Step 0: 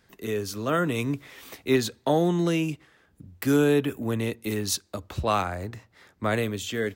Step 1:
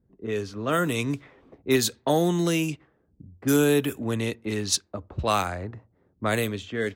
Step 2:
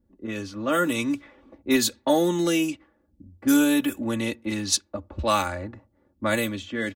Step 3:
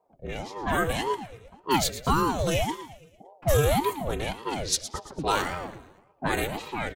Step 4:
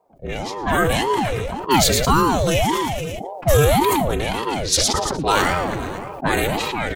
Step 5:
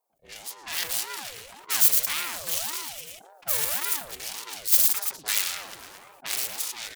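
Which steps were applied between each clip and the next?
level-controlled noise filter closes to 310 Hz, open at -21 dBFS; treble shelf 4.6 kHz +11 dB
comb 3.5 ms, depth 83%; trim -1 dB
feedback delay 113 ms, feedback 50%, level -13 dB; ring modulator with a swept carrier 430 Hz, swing 65%, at 1.8 Hz
decay stretcher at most 21 dB/s; trim +6.5 dB
self-modulated delay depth 0.82 ms; pre-emphasis filter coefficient 0.97; trim -1 dB

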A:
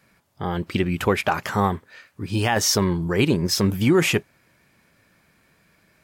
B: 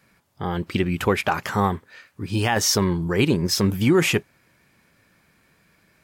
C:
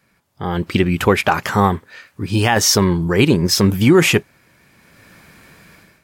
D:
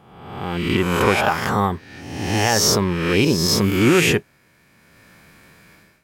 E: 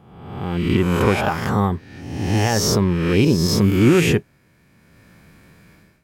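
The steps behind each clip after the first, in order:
peaking EQ 630 Hz -2.5 dB 0.26 oct
level rider gain up to 16 dB; trim -1 dB
reverse spectral sustain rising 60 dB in 1.03 s; trim -6 dB
bass shelf 390 Hz +9.5 dB; trim -4.5 dB

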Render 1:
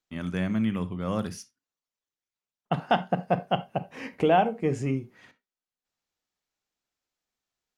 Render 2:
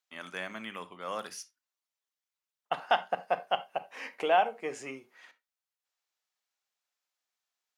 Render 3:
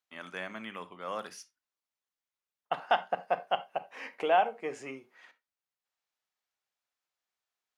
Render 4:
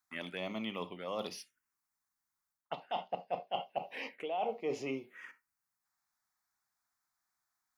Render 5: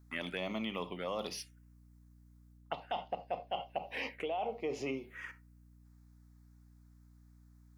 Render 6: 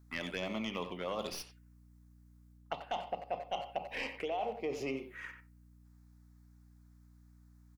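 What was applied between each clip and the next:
high-pass 700 Hz 12 dB/octave
treble shelf 4 kHz -7 dB
reverse; compression 10:1, threshold -37 dBFS, peak gain reduction 17.5 dB; reverse; touch-sensitive phaser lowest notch 500 Hz, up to 1.6 kHz, full sweep at -40.5 dBFS; trim +7 dB
compression 5:1, threshold -38 dBFS, peak gain reduction 8.5 dB; hum 60 Hz, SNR 18 dB; trim +4.5 dB
tracing distortion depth 0.046 ms; speakerphone echo 90 ms, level -9 dB

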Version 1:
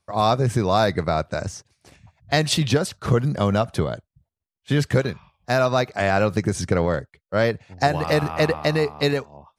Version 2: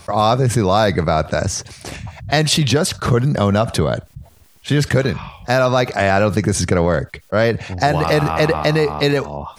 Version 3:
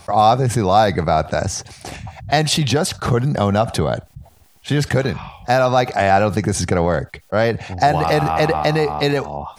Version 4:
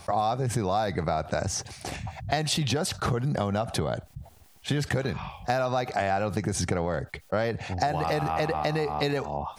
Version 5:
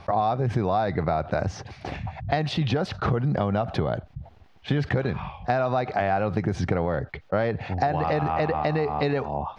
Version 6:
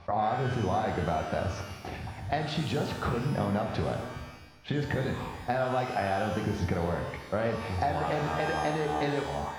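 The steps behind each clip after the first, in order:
level flattener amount 50%; trim +2.5 dB
peaking EQ 770 Hz +8.5 dB 0.26 oct; trim -2 dB
compression 5:1, threshold -20 dBFS, peak gain reduction 11 dB; trim -3.5 dB
distance through air 270 m; trim +3.5 dB
pitch-shifted reverb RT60 1 s, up +12 st, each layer -8 dB, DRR 3 dB; trim -6.5 dB

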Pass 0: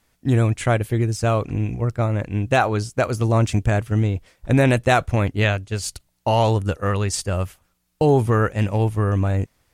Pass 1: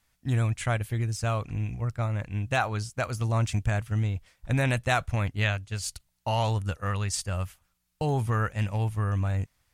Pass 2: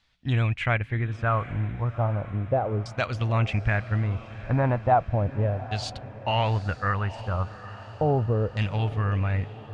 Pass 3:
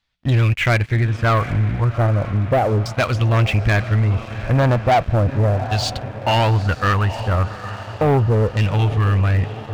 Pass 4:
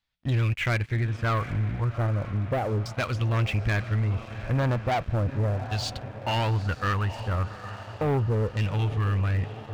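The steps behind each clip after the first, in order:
peaking EQ 370 Hz -10.5 dB 1.6 oct; trim -5 dB
LFO low-pass saw down 0.35 Hz 440–4100 Hz; echo that smears into a reverb 806 ms, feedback 56%, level -15 dB; trim +1.5 dB
waveshaping leveller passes 3
dynamic bell 680 Hz, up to -4 dB, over -33 dBFS, Q 2.7; trim -8.5 dB

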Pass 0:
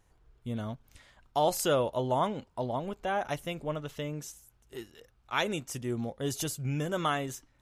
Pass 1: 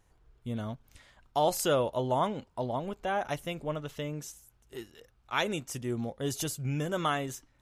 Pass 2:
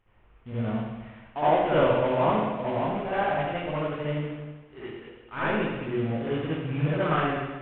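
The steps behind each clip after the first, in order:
no audible change
CVSD coder 16 kbps; reverberation RT60 1.2 s, pre-delay 60 ms, DRR -11 dB; trim -4.5 dB

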